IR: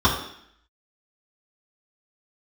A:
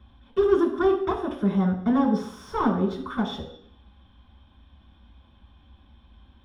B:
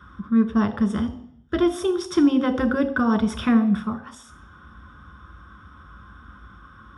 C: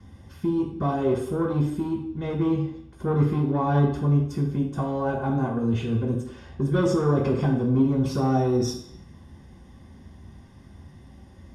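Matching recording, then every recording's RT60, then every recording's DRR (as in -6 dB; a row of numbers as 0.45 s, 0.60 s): C; 0.65 s, 0.65 s, 0.65 s; -1.5 dB, 7.0 dB, -8.0 dB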